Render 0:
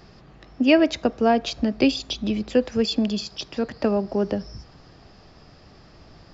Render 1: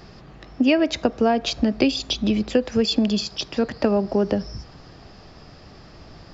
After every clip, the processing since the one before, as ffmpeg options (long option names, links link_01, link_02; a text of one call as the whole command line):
ffmpeg -i in.wav -af "acompressor=threshold=-19dB:ratio=6,volume=4.5dB" out.wav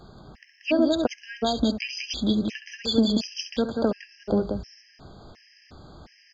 ffmpeg -i in.wav -filter_complex "[0:a]asplit=2[link_01][link_02];[link_02]aecho=0:1:67.06|183.7:0.316|0.631[link_03];[link_01][link_03]amix=inputs=2:normalize=0,afftfilt=real='re*gt(sin(2*PI*1.4*pts/sr)*(1-2*mod(floor(b*sr/1024/1600),2)),0)':imag='im*gt(sin(2*PI*1.4*pts/sr)*(1-2*mod(floor(b*sr/1024/1600),2)),0)':win_size=1024:overlap=0.75,volume=-3dB" out.wav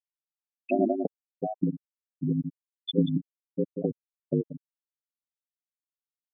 ffmpeg -i in.wav -af "afftfilt=real='re*gte(hypot(re,im),0.398)':imag='im*gte(hypot(re,im),0.398)':win_size=1024:overlap=0.75,aeval=exprs='val(0)*sin(2*PI*51*n/s)':channel_layout=same" out.wav